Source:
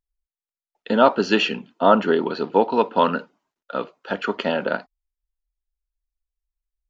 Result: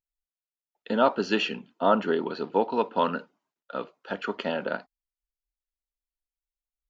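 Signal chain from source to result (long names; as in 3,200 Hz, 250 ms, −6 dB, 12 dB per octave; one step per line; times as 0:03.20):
noise reduction from a noise print of the clip's start 7 dB
level −6.5 dB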